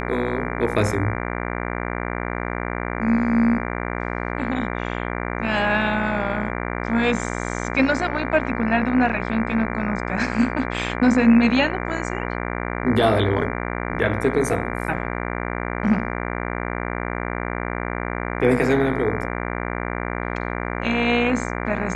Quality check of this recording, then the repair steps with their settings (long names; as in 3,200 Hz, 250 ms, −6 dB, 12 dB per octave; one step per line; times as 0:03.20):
mains buzz 60 Hz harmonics 39 −27 dBFS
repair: hum removal 60 Hz, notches 39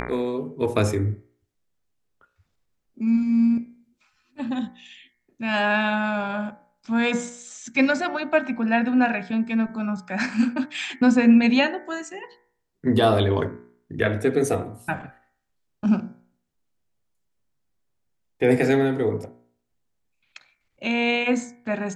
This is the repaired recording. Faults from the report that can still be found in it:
none of them is left